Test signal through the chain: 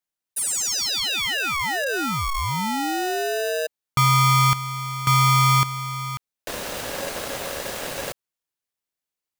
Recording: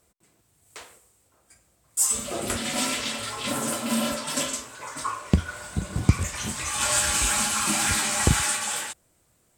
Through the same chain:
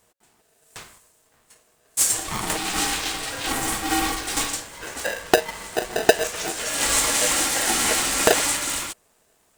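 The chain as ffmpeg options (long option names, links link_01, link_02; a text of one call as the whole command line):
ffmpeg -i in.wav -af "aeval=exprs='val(0)*sgn(sin(2*PI*550*n/s))':channel_layout=same,volume=2.5dB" out.wav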